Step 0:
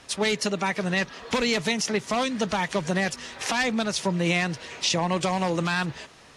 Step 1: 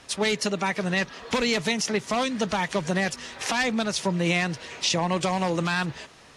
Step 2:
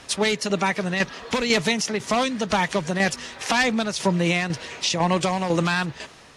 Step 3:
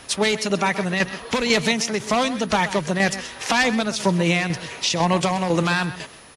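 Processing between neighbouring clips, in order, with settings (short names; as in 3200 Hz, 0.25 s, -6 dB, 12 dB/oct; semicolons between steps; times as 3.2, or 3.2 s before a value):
nothing audible
tremolo saw down 2 Hz, depth 55%; gain +5.5 dB
outdoor echo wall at 22 m, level -13 dB; whine 10000 Hz -52 dBFS; gain +1.5 dB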